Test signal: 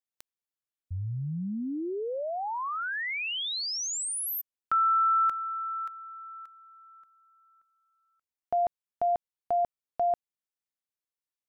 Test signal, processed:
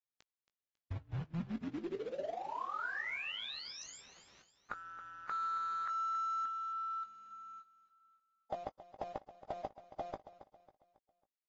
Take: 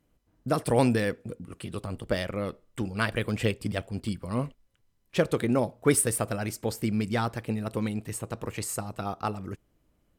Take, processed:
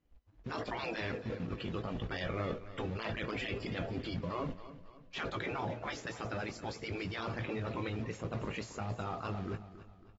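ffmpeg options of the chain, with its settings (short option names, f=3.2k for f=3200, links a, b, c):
-filter_complex "[0:a]afftdn=nr=22:nf=-52,aemphasis=mode=production:type=75kf,afftfilt=real='re*lt(hypot(re,im),0.178)':imag='im*lt(hypot(re,im),0.178)':win_size=1024:overlap=0.75,highshelf=f=9.5k:g=-10,areverse,acompressor=threshold=-48dB:ratio=6:attack=3:release=33:knee=1:detection=rms,areverse,acrusher=bits=3:mode=log:mix=0:aa=0.000001,asoftclip=type=tanh:threshold=-37dB,adynamicsmooth=sensitivity=3.5:basefreq=4k,asplit=2[a][b];[b]adelay=18,volume=-10dB[c];[a][c]amix=inputs=2:normalize=0,aecho=1:1:274|548|822|1096:0.2|0.0838|0.0352|0.0148,volume=12dB" -ar 44100 -c:a aac -b:a 24k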